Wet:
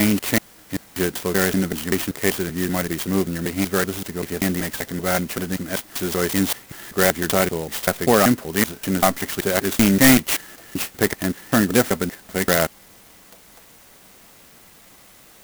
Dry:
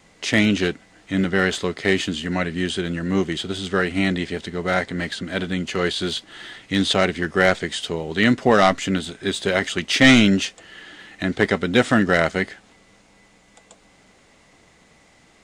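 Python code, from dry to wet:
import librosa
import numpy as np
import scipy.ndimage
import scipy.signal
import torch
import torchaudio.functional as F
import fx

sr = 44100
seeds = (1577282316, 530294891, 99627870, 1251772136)

y = fx.block_reorder(x, sr, ms=192.0, group=3)
y = fx.quant_dither(y, sr, seeds[0], bits=8, dither='triangular')
y = fx.clock_jitter(y, sr, seeds[1], jitter_ms=0.076)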